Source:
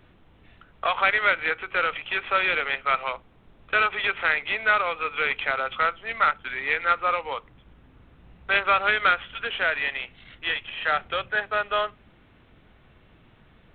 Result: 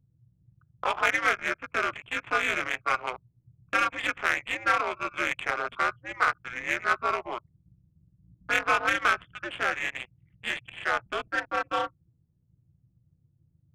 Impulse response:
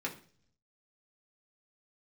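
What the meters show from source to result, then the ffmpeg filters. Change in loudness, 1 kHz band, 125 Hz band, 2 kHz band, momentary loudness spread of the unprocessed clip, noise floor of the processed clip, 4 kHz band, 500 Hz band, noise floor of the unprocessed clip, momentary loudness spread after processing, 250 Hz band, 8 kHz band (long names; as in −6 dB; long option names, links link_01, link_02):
−3.5 dB, −3.0 dB, −1.0 dB, −3.5 dB, 9 LU, −69 dBFS, −5.0 dB, −4.0 dB, −56 dBFS, 9 LU, +3.5 dB, can't be measured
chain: -af "anlmdn=1.58,aeval=exprs='val(0)*sin(2*PI*120*n/s)':channel_layout=same,adynamicsmooth=sensitivity=2:basefreq=1900"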